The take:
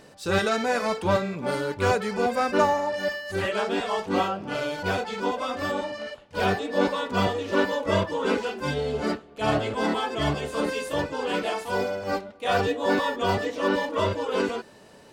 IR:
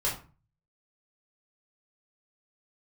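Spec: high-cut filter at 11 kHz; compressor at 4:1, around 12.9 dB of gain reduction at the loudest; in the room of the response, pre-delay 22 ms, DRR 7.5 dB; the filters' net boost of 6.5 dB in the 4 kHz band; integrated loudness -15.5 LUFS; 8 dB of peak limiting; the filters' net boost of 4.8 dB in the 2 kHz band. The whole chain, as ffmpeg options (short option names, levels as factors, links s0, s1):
-filter_complex "[0:a]lowpass=11000,equalizer=f=2000:t=o:g=5,equalizer=f=4000:t=o:g=6.5,acompressor=threshold=0.0251:ratio=4,alimiter=level_in=1.41:limit=0.0631:level=0:latency=1,volume=0.708,asplit=2[s0][s1];[1:a]atrim=start_sample=2205,adelay=22[s2];[s1][s2]afir=irnorm=-1:irlink=0,volume=0.178[s3];[s0][s3]amix=inputs=2:normalize=0,volume=10"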